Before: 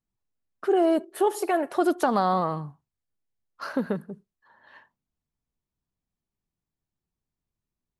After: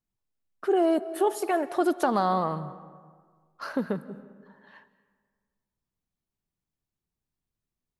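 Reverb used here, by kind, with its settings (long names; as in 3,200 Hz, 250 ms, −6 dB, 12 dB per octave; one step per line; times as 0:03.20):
comb and all-pass reverb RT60 1.7 s, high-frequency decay 0.5×, pre-delay 120 ms, DRR 16.5 dB
level −1.5 dB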